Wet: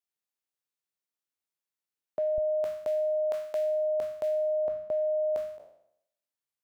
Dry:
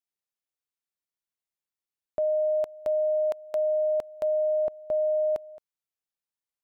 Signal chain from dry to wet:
peak hold with a decay on every bin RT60 0.73 s
high-pass filter 130 Hz, from 0:02.38 58 Hz
level −3 dB

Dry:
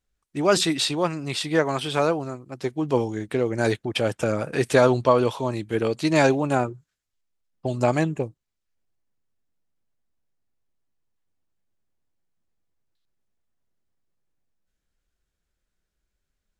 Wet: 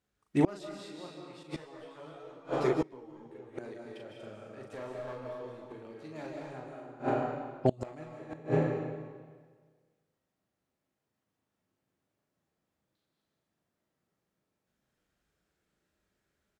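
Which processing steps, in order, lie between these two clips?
high-pass filter 110 Hz 12 dB per octave
high-shelf EQ 2,600 Hz −8 dB
asymmetric clip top −16.5 dBFS
double-tracking delay 39 ms −4 dB
comb and all-pass reverb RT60 1.6 s, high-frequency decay 0.9×, pre-delay 115 ms, DRR −1 dB
gate with flip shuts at −15 dBFS, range −28 dB
0:01.43–0:03.58: string-ensemble chorus
level +2.5 dB

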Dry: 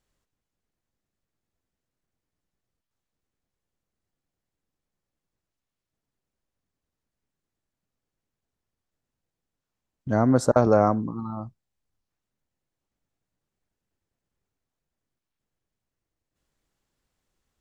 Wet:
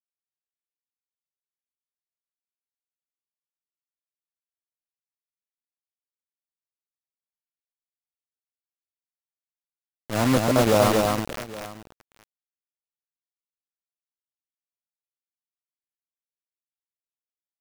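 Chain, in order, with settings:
bit reduction 4 bits
multi-tap delay 240/818 ms −3.5/−18.5 dB
transient designer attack −8 dB, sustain −2 dB

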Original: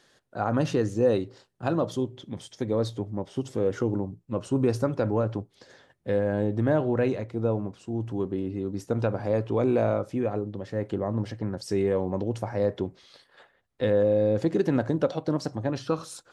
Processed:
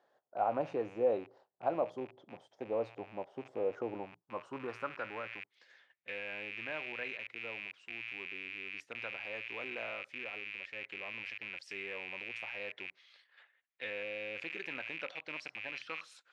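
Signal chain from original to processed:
loose part that buzzes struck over −41 dBFS, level −27 dBFS
band-pass filter sweep 720 Hz → 2,300 Hz, 0:03.92–0:05.62
level −1 dB

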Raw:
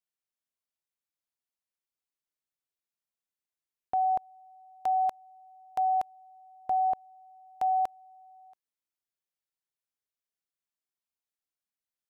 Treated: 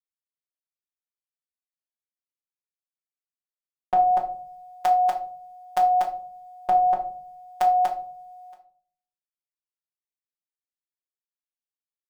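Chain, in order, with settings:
parametric band 180 Hz −9 dB 2.5 octaves
in parallel at −2 dB: downward compressor, threshold −45 dBFS, peak gain reduction 16.5 dB
on the sum: phases set to zero 182 Hz
automatic gain control gain up to 12.5 dB
downward expander −38 dBFS
on a send at −1.5 dB: convolution reverb RT60 0.50 s, pre-delay 5 ms

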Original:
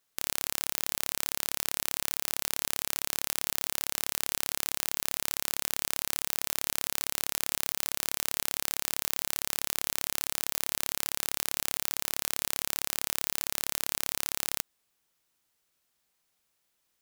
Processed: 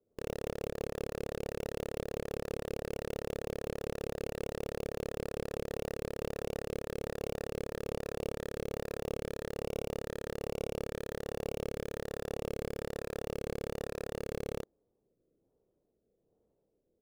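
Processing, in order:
rotating-speaker cabinet horn 6 Hz, later 1.2 Hz, at 0:05.13
transistor ladder low-pass 540 Hz, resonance 50%
double-tracking delay 30 ms −8 dB
in parallel at −5.5 dB: wrap-around overflow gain 49.5 dB
on the sum: level +16.5 dB

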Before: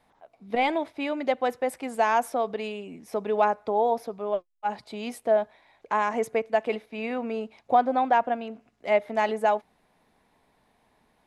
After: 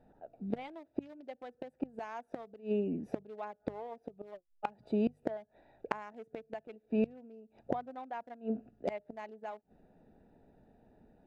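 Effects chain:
adaptive Wiener filter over 41 samples
gate with flip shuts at −28 dBFS, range −27 dB
mains-hum notches 50/100/150 Hz
0:03.38–0:04.31: one half of a high-frequency compander encoder only
level +7.5 dB

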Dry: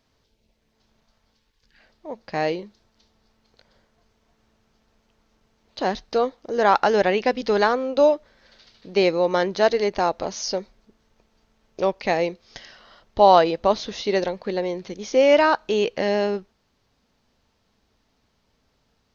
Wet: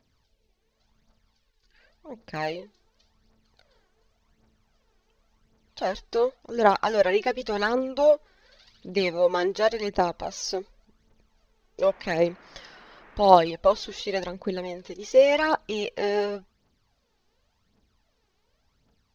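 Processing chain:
phase shifter 0.9 Hz, delay 2.8 ms, feedback 61%
0:11.81–0:13.30: noise in a band 150–2,000 Hz −47 dBFS
level −5.5 dB

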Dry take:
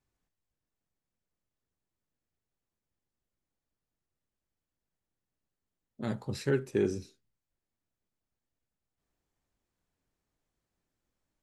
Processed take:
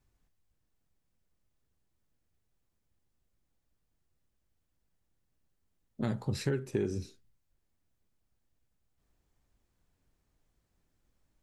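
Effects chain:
low-shelf EQ 120 Hz +9.5 dB
downward compressor 6 to 1, threshold −32 dBFS, peak gain reduction 10.5 dB
level +4 dB

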